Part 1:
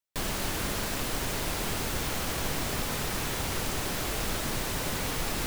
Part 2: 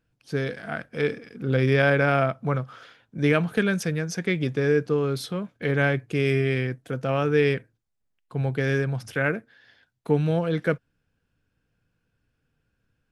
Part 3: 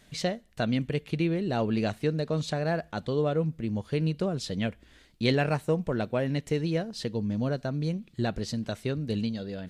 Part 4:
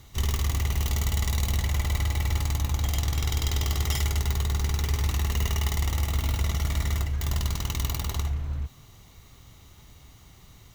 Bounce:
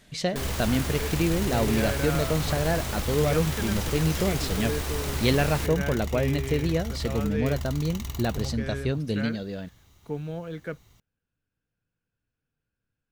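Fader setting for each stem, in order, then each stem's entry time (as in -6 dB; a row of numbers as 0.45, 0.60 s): -2.0, -11.0, +2.0, -7.0 dB; 0.20, 0.00, 0.00, 0.25 s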